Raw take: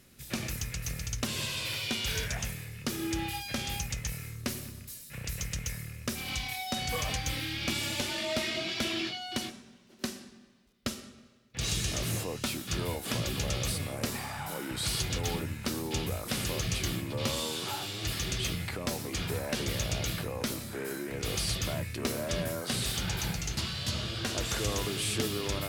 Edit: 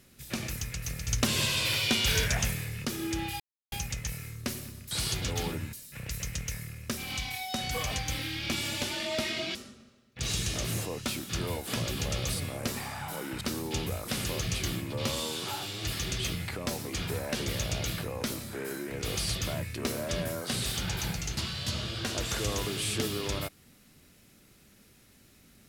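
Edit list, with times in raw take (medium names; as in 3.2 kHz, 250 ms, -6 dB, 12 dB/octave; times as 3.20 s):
1.08–2.85 s: gain +6 dB
3.40–3.72 s: mute
8.73–10.93 s: delete
14.79–15.61 s: move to 4.91 s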